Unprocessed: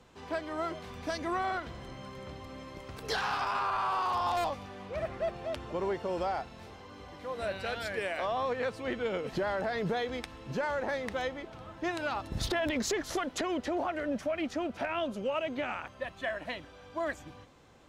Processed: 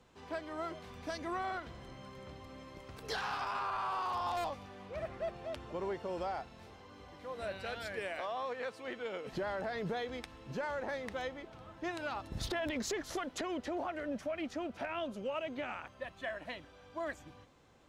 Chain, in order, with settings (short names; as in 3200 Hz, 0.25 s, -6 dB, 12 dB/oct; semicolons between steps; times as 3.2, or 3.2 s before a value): 8.21–9.27 HPF 390 Hz 6 dB/oct; gain -5.5 dB